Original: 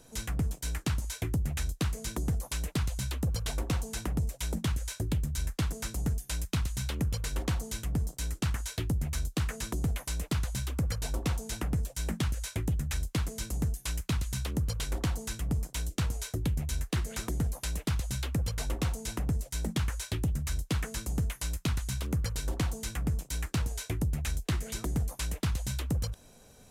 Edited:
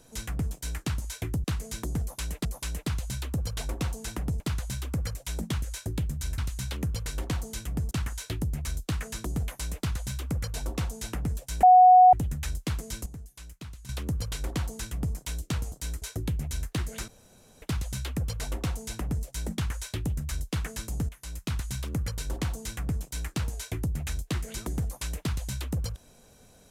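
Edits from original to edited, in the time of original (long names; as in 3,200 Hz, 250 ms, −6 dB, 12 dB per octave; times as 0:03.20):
0:01.44–0:01.77: remove
0:02.34–0:02.78: repeat, 2 plays
0:05.52–0:06.56: remove
0:08.09–0:08.39: move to 0:16.20
0:10.25–0:11.00: duplicate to 0:04.29
0:12.11–0:12.61: beep over 735 Hz −11 dBFS
0:13.54–0:14.37: clip gain −12 dB
0:17.26–0:17.80: fill with room tone
0:21.27–0:21.76: fade in, from −13.5 dB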